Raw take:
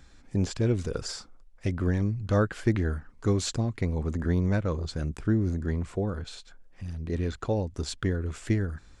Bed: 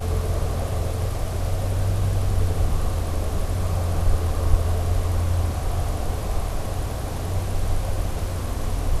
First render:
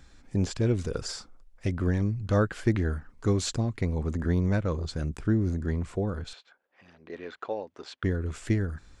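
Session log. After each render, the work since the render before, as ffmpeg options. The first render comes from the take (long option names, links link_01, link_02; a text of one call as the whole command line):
ffmpeg -i in.wav -filter_complex "[0:a]asettb=1/sr,asplit=3[link_01][link_02][link_03];[link_01]atrim=end=6.334[link_04];[link_02]atrim=start=6.33:end=8.04,asetpts=PTS-STARTPTS,afade=type=in:duration=0.004:curve=qsin,afade=type=out:start_time=1.706:duration=0.004:curve=qsin,highpass=510,lowpass=3000[link_05];[link_03]atrim=start=8.036[link_06];[link_04][link_05]acrossfade=duration=0.004:curve1=hsin:curve2=qsin[link_07];[link_07][link_06]acrossfade=duration=0.004:curve1=qsin:curve2=hsin" out.wav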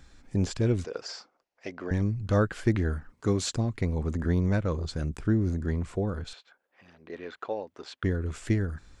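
ffmpeg -i in.wav -filter_complex "[0:a]asettb=1/sr,asplit=3[link_01][link_02][link_03];[link_01]atrim=end=0.844[link_04];[link_02]atrim=start=0.84:end=1.91,asetpts=PTS-STARTPTS,afade=type=in:duration=0.004:curve=qsin,afade=type=out:start_time=1.066:duration=0.004:curve=qsin,highpass=430,equalizer=frequency=690:width_type=q:width=4:gain=3,equalizer=frequency=1300:width_type=q:width=4:gain=-3,equalizer=frequency=3600:width_type=q:width=4:gain=-6,lowpass=frequency=5700:width=0.5412,lowpass=frequency=5700:width=1.3066[link_05];[link_03]atrim=start=1.906[link_06];[link_04][link_05]acrossfade=duration=0.004:curve1=hsin:curve2=qsin[link_07];[link_07][link_06]acrossfade=duration=0.004:curve1=qsin:curve2=hsin,asettb=1/sr,asplit=3[link_08][link_09][link_10];[link_08]atrim=end=3.124[link_11];[link_09]atrim=start=3.12:end=3.56,asetpts=PTS-STARTPTS,afade=type=in:duration=0.004:curve=qsin,afade=type=out:start_time=0.436:duration=0.004:curve=qsin,highpass=99[link_12];[link_10]atrim=start=3.556[link_13];[link_11][link_12]acrossfade=duration=0.004:curve1=hsin:curve2=qsin[link_14];[link_14][link_13]acrossfade=duration=0.004:curve1=qsin:curve2=hsin" out.wav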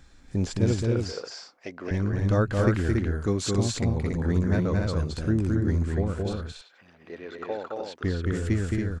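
ffmpeg -i in.wav -af "aecho=1:1:218.7|279.9:0.708|0.631" out.wav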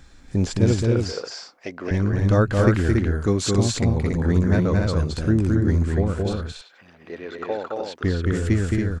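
ffmpeg -i in.wav -af "volume=5dB" out.wav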